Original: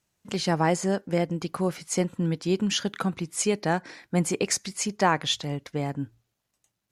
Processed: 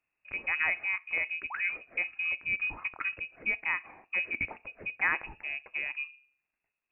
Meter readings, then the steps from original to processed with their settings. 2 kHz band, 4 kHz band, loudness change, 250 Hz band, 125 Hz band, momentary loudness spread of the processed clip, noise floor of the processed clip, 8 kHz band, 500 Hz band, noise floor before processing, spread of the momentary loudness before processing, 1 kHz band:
+6.0 dB, -17.0 dB, -4.5 dB, -27.0 dB, -27.5 dB, 8 LU, under -85 dBFS, under -40 dB, -22.5 dB, -81 dBFS, 7 LU, -12.5 dB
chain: painted sound fall, 1.50–1.77 s, 210–2000 Hz -32 dBFS; FDN reverb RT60 0.39 s, low-frequency decay 1.4×, high-frequency decay 0.9×, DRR 16.5 dB; frequency inversion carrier 2.7 kHz; trim -6.5 dB

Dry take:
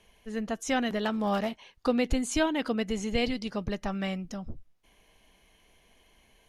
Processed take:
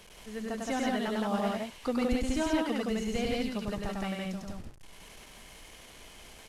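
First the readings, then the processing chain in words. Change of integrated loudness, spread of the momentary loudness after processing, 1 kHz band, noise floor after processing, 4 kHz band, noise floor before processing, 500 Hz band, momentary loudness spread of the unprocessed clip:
-2.0 dB, 20 LU, -1.5 dB, -52 dBFS, -3.0 dB, -64 dBFS, -2.0 dB, 9 LU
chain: one-bit delta coder 64 kbps, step -42.5 dBFS; loudspeakers at several distances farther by 34 m -2 dB, 58 m -1 dB; trim -5.5 dB

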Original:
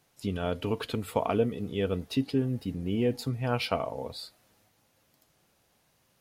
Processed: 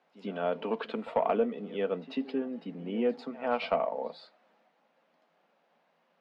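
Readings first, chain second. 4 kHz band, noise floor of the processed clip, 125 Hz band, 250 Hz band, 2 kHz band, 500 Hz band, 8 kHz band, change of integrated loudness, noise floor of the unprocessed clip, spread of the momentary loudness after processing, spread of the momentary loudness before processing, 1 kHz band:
-7.5 dB, -72 dBFS, -16.0 dB, -4.0 dB, -1.5 dB, +0.5 dB, under -20 dB, -2.0 dB, -70 dBFS, 9 LU, 7 LU, +1.5 dB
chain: rippled Chebyshev high-pass 160 Hz, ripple 6 dB; overdrive pedal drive 12 dB, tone 2.1 kHz, clips at -14 dBFS; low-pass 3.3 kHz 12 dB/octave; reverse echo 95 ms -17.5 dB

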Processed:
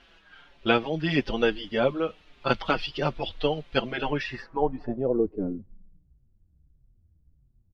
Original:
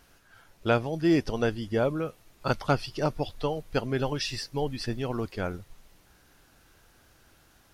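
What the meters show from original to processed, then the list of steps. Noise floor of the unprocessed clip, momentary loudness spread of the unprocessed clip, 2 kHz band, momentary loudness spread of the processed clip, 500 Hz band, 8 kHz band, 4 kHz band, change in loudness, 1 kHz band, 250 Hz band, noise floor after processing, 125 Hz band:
-61 dBFS, 9 LU, +5.0 dB, 8 LU, +2.5 dB, under -10 dB, +4.0 dB, +1.5 dB, +2.5 dB, 0.0 dB, -64 dBFS, -3.0 dB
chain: low-pass sweep 3.2 kHz -> 110 Hz, 3.93–6.10 s; peaking EQ 110 Hz -14 dB 0.4 oct; endless flanger 5.4 ms -1.6 Hz; trim +5 dB

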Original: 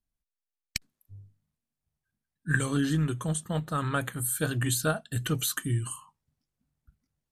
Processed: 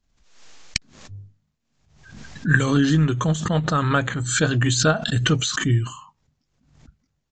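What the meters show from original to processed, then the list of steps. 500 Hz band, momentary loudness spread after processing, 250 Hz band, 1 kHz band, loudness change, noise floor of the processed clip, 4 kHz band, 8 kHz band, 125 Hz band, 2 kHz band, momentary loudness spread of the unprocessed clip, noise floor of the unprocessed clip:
+9.0 dB, 11 LU, +9.0 dB, +9.5 dB, +8.5 dB, -74 dBFS, +11.0 dB, +5.5 dB, +9.0 dB, +9.5 dB, 10 LU, under -85 dBFS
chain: resampled via 16 kHz; swell ahead of each attack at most 69 dB/s; trim +8.5 dB

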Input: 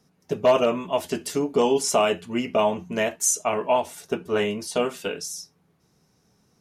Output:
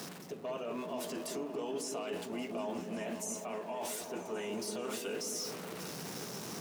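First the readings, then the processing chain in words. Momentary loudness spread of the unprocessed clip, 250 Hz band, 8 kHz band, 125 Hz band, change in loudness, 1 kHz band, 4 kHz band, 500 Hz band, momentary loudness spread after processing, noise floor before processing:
11 LU, -11.5 dB, -13.0 dB, -11.5 dB, -15.0 dB, -16.5 dB, -11.0 dB, -16.0 dB, 4 LU, -66 dBFS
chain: jump at every zero crossing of -37 dBFS; reverse; compression 5:1, threshold -33 dBFS, peak gain reduction 17.5 dB; reverse; high-pass 210 Hz 12 dB/octave; peak limiter -32 dBFS, peak gain reduction 10 dB; on a send: delay with an opening low-pass 188 ms, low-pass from 400 Hz, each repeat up 1 oct, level -3 dB

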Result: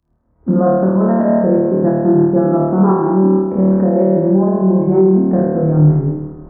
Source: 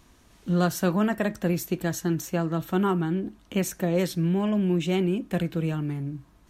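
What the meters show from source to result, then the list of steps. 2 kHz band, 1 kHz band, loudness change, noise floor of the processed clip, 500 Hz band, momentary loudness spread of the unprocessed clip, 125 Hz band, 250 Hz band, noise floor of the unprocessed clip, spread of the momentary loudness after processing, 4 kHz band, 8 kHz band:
no reading, +12.0 dB, +13.0 dB, -59 dBFS, +15.0 dB, 6 LU, +12.5 dB, +13.5 dB, -58 dBFS, 3 LU, under -35 dB, under -40 dB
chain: recorder AGC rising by 18 dB/s; reverb removal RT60 0.53 s; high-pass 110 Hz 6 dB/octave; bass shelf 320 Hz -3 dB; compression 1.5:1, threshold -36 dBFS, peak gain reduction 6 dB; Gaussian low-pass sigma 8.8 samples; flutter echo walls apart 4.5 m, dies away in 1.5 s; algorithmic reverb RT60 3.7 s, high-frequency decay 0.5×, pre-delay 10 ms, DRR 11 dB; loudness maximiser +22 dB; three bands expanded up and down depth 100%; trim -3.5 dB

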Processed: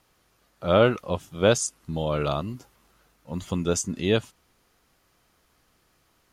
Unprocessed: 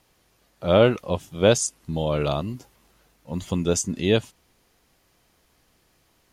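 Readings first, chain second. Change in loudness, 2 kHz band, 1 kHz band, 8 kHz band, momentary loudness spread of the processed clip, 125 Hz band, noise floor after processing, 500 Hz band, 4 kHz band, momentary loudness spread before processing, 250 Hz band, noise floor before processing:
-2.0 dB, -0.5 dB, 0.0 dB, -2.5 dB, 16 LU, -2.5 dB, -67 dBFS, -2.5 dB, -2.5 dB, 15 LU, -2.5 dB, -65 dBFS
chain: peaking EQ 1.3 kHz +5.5 dB 0.53 oct; trim -2.5 dB

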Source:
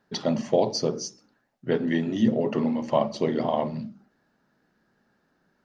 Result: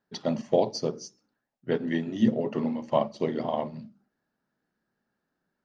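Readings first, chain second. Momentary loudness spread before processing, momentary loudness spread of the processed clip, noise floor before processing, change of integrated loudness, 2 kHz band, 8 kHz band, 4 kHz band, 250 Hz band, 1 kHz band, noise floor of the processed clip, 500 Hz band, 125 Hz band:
12 LU, 15 LU, -71 dBFS, -2.5 dB, -3.5 dB, no reading, -5.5 dB, -3.0 dB, -2.5 dB, -82 dBFS, -2.5 dB, -3.5 dB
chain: upward expansion 1.5:1, over -40 dBFS

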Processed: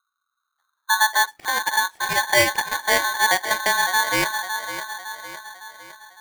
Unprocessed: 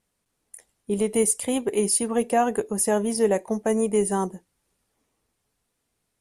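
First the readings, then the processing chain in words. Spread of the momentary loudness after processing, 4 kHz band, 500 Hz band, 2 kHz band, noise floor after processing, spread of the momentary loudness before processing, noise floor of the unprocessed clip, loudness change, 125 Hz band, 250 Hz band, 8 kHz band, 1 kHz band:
17 LU, +16.0 dB, -6.0 dB, +20.0 dB, -79 dBFS, 4 LU, -77 dBFS, +3.5 dB, -4.5 dB, -11.5 dB, +0.5 dB, +8.5 dB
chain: feedback echo behind a low-pass 558 ms, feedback 49%, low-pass 690 Hz, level -7 dB; low-pass sweep 160 Hz -> 1.1 kHz, 0.52–1.35 s; polarity switched at an audio rate 1.3 kHz

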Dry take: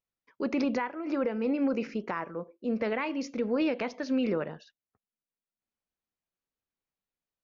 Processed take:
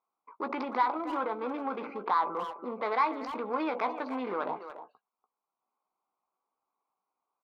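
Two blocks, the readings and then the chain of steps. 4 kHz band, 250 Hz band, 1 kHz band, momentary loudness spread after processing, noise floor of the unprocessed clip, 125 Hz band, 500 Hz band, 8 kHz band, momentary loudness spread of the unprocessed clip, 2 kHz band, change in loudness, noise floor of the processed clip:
-3.5 dB, -8.0 dB, +9.5 dB, 9 LU, under -85 dBFS, under -10 dB, -3.5 dB, no reading, 7 LU, -1.0 dB, -1.5 dB, under -85 dBFS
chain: local Wiener filter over 25 samples; high-order bell 1.4 kHz +8 dB; in parallel at -1 dB: compressor with a negative ratio -40 dBFS, ratio -1; on the sum: saturation -21 dBFS, distortion -16 dB; cabinet simulation 440–4100 Hz, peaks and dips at 540 Hz -4 dB, 780 Hz +5 dB, 1.1 kHz +7 dB, 1.8 kHz -9 dB, 2.9 kHz -8 dB; doubling 16 ms -9.5 dB; speakerphone echo 290 ms, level -11 dB

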